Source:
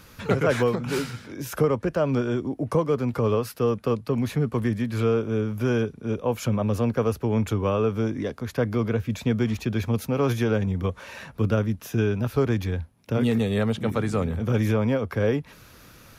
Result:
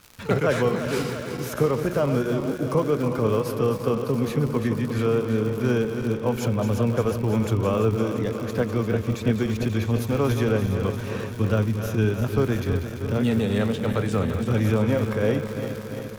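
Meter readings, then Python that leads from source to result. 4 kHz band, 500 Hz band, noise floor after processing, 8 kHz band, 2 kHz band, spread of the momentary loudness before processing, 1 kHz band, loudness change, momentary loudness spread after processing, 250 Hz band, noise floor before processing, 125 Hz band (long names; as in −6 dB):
+1.5 dB, +1.0 dB, −33 dBFS, +2.0 dB, +1.0 dB, 6 LU, +1.0 dB, +1.0 dB, 5 LU, +1.0 dB, −50 dBFS, +1.5 dB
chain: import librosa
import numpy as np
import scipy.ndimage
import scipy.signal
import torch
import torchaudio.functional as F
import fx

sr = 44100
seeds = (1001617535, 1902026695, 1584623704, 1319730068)

y = fx.reverse_delay_fb(x, sr, ms=172, feedback_pct=83, wet_db=-9.0)
y = fx.dmg_crackle(y, sr, seeds[0], per_s=150.0, level_db=-31.0)
y = np.sign(y) * np.maximum(np.abs(y) - 10.0 ** (-50.5 / 20.0), 0.0)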